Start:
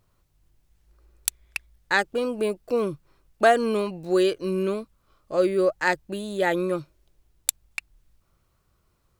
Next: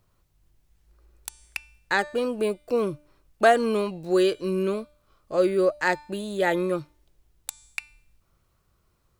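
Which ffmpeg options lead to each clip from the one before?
-filter_complex "[0:a]bandreject=f=297:t=h:w=4,bandreject=f=594:t=h:w=4,bandreject=f=891:t=h:w=4,bandreject=f=1.188k:t=h:w=4,bandreject=f=1.485k:t=h:w=4,bandreject=f=1.782k:t=h:w=4,bandreject=f=2.079k:t=h:w=4,bandreject=f=2.376k:t=h:w=4,bandreject=f=2.673k:t=h:w=4,bandreject=f=2.97k:t=h:w=4,bandreject=f=3.267k:t=h:w=4,bandreject=f=3.564k:t=h:w=4,bandreject=f=3.861k:t=h:w=4,bandreject=f=4.158k:t=h:w=4,bandreject=f=4.455k:t=h:w=4,bandreject=f=4.752k:t=h:w=4,bandreject=f=5.049k:t=h:w=4,bandreject=f=5.346k:t=h:w=4,bandreject=f=5.643k:t=h:w=4,bandreject=f=5.94k:t=h:w=4,bandreject=f=6.237k:t=h:w=4,bandreject=f=6.534k:t=h:w=4,bandreject=f=6.831k:t=h:w=4,bandreject=f=7.128k:t=h:w=4,bandreject=f=7.425k:t=h:w=4,bandreject=f=7.722k:t=h:w=4,bandreject=f=8.019k:t=h:w=4,bandreject=f=8.316k:t=h:w=4,bandreject=f=8.613k:t=h:w=4,bandreject=f=8.91k:t=h:w=4,bandreject=f=9.207k:t=h:w=4,bandreject=f=9.504k:t=h:w=4,bandreject=f=9.801k:t=h:w=4,acrossover=split=850|1100[a][b][c];[c]alimiter=limit=-14dB:level=0:latency=1:release=179[d];[a][b][d]amix=inputs=3:normalize=0"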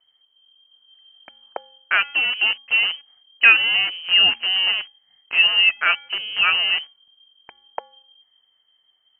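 -filter_complex "[0:a]acrossover=split=200|1400[a][b][c];[b]acrusher=bits=6:dc=4:mix=0:aa=0.000001[d];[a][d][c]amix=inputs=3:normalize=0,lowpass=f=2.7k:t=q:w=0.5098,lowpass=f=2.7k:t=q:w=0.6013,lowpass=f=2.7k:t=q:w=0.9,lowpass=f=2.7k:t=q:w=2.563,afreqshift=-3200,volume=5dB"

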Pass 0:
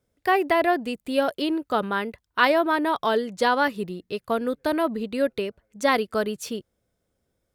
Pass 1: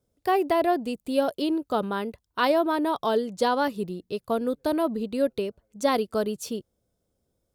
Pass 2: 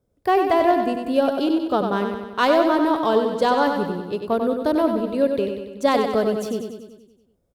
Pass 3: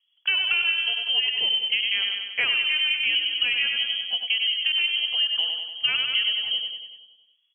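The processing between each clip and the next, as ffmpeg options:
-af "equalizer=f=1.9k:w=1.1:g=-10"
-filter_complex "[0:a]asplit=2[a][b];[b]adynamicsmooth=sensitivity=3.5:basefreq=2.9k,volume=2.5dB[c];[a][c]amix=inputs=2:normalize=0,aecho=1:1:95|190|285|380|475|570|665|760:0.501|0.291|0.169|0.0978|0.0567|0.0329|0.0191|0.0111,volume=-3dB"
-af "acompressor=threshold=-20dB:ratio=6,lowpass=f=2.9k:t=q:w=0.5098,lowpass=f=2.9k:t=q:w=0.6013,lowpass=f=2.9k:t=q:w=0.9,lowpass=f=2.9k:t=q:w=2.563,afreqshift=-3400"

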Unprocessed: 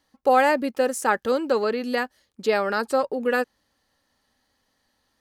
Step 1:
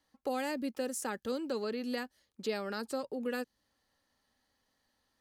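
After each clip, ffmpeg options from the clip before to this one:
-filter_complex "[0:a]acrossover=split=340|3000[a][b][c];[b]acompressor=threshold=-34dB:ratio=3[d];[a][d][c]amix=inputs=3:normalize=0,volume=-7dB"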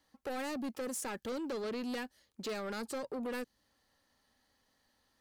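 -af "asoftclip=type=tanh:threshold=-37.5dB,volume=3dB"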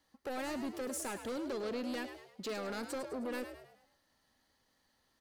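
-filter_complex "[0:a]asplit=6[a][b][c][d][e][f];[b]adelay=104,afreqshift=67,volume=-9.5dB[g];[c]adelay=208,afreqshift=134,volume=-16.8dB[h];[d]adelay=312,afreqshift=201,volume=-24.2dB[i];[e]adelay=416,afreqshift=268,volume=-31.5dB[j];[f]adelay=520,afreqshift=335,volume=-38.8dB[k];[a][g][h][i][j][k]amix=inputs=6:normalize=0,volume=-1dB"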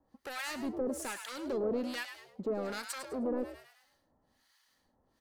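-filter_complex "[0:a]acrossover=split=990[a][b];[a]aeval=exprs='val(0)*(1-1/2+1/2*cos(2*PI*1.2*n/s))':c=same[c];[b]aeval=exprs='val(0)*(1-1/2-1/2*cos(2*PI*1.2*n/s))':c=same[d];[c][d]amix=inputs=2:normalize=0,volume=7dB"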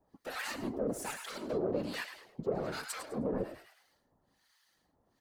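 -af "afftfilt=real='hypot(re,im)*cos(2*PI*random(0))':imag='hypot(re,im)*sin(2*PI*random(1))':win_size=512:overlap=0.75,volume=5.5dB"

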